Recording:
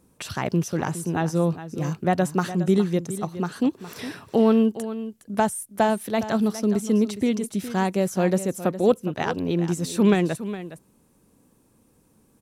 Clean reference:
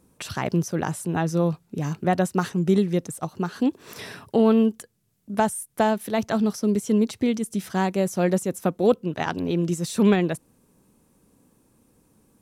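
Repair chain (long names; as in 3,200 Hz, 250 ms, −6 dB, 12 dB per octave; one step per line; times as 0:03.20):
echo removal 413 ms −13 dB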